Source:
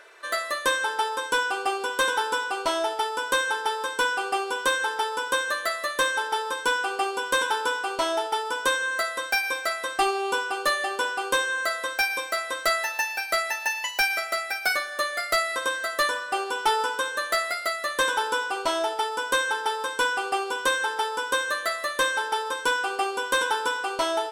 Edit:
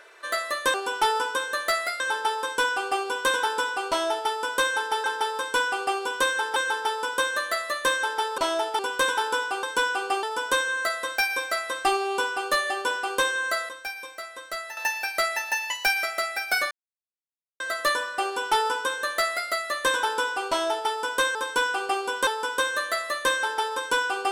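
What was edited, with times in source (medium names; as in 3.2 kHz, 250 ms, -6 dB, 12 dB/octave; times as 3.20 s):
3.78–4.70 s: swap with 19.49–21.01 s
6.52–7.12 s: swap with 7.96–8.37 s
11.83–12.91 s: gain -10 dB
14.85–15.74 s: mute
16.38–17.64 s: copy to 0.74 s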